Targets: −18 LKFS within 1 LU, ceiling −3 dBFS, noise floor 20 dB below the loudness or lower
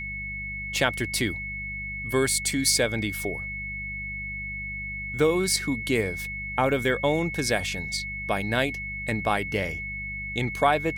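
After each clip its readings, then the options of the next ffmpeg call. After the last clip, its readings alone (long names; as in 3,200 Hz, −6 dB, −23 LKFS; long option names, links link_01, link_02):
mains hum 50 Hz; hum harmonics up to 200 Hz; level of the hum −37 dBFS; interfering tone 2,200 Hz; level of the tone −32 dBFS; integrated loudness −26.5 LKFS; sample peak −7.0 dBFS; target loudness −18.0 LKFS
→ -af "bandreject=frequency=50:width_type=h:width=4,bandreject=frequency=100:width_type=h:width=4,bandreject=frequency=150:width_type=h:width=4,bandreject=frequency=200:width_type=h:width=4"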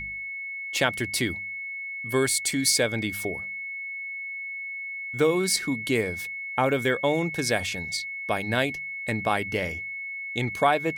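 mains hum none found; interfering tone 2,200 Hz; level of the tone −32 dBFS
→ -af "bandreject=frequency=2200:width=30"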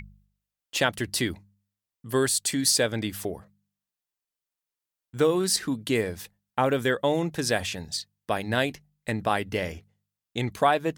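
interfering tone none found; integrated loudness −26.5 LKFS; sample peak −7.5 dBFS; target loudness −18.0 LKFS
→ -af "volume=8.5dB,alimiter=limit=-3dB:level=0:latency=1"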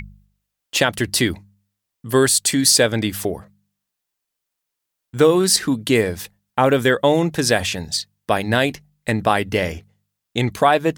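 integrated loudness −18.5 LKFS; sample peak −3.0 dBFS; background noise floor −81 dBFS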